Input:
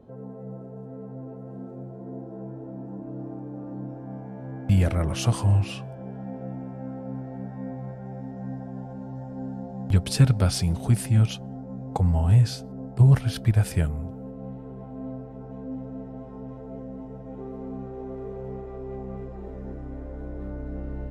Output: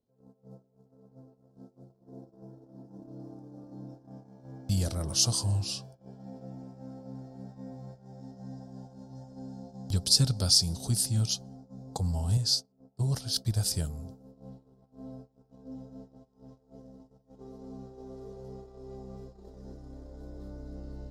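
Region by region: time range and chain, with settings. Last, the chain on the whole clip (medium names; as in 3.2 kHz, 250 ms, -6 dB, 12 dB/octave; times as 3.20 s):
12.37–13.45 s: bass shelf 130 Hz -9.5 dB + tape noise reduction on one side only decoder only
whole clip: gate -36 dBFS, range -22 dB; resonant high shelf 3.3 kHz +13.5 dB, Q 3; loudness maximiser -0.5 dB; trim -8 dB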